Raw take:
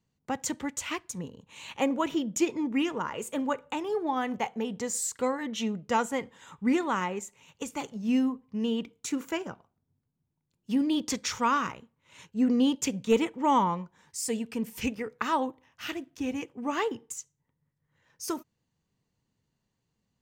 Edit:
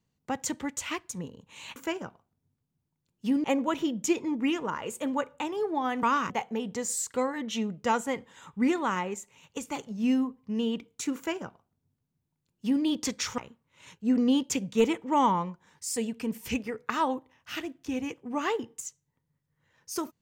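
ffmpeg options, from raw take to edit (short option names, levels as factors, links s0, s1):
-filter_complex "[0:a]asplit=6[s0][s1][s2][s3][s4][s5];[s0]atrim=end=1.762[s6];[s1]atrim=start=9.208:end=10.892[s7];[s2]atrim=start=1.758:end=4.352[s8];[s3]atrim=start=11.428:end=11.702[s9];[s4]atrim=start=4.348:end=11.432[s10];[s5]atrim=start=11.698[s11];[s6][s7]acrossfade=d=0.004:c1=hsin:c2=hsin[s12];[s12][s8]acrossfade=d=0.004:c1=hsin:c2=hsin[s13];[s13][s9]acrossfade=d=0.004:c1=hsin:c2=hsin[s14];[s14][s10]acrossfade=d=0.004:c1=hsin:c2=hsin[s15];[s15][s11]acrossfade=d=0.004:c1=hsin:c2=hsin"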